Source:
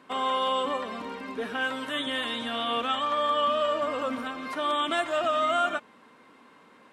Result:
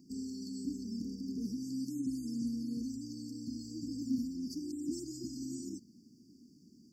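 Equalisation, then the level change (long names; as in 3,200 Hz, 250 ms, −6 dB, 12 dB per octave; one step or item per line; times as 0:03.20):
linear-phase brick-wall band-stop 460–4,400 Hz
phaser with its sweep stopped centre 2,200 Hz, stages 8
+6.0 dB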